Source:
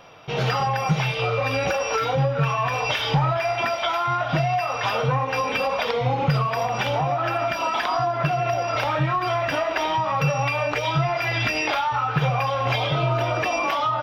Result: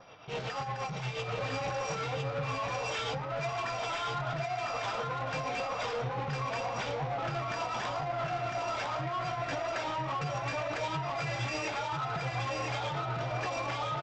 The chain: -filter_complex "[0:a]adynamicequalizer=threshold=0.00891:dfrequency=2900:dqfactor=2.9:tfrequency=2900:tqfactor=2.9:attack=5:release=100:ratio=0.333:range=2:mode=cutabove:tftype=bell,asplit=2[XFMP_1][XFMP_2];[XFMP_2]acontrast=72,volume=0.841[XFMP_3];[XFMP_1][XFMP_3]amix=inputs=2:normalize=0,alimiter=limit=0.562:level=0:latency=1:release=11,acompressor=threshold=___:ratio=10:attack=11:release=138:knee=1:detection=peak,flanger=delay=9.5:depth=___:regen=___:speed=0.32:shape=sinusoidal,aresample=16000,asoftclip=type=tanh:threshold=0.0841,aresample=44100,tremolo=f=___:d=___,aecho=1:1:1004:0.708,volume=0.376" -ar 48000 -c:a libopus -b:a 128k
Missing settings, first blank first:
0.2, 9.9, -57, 8.4, 0.49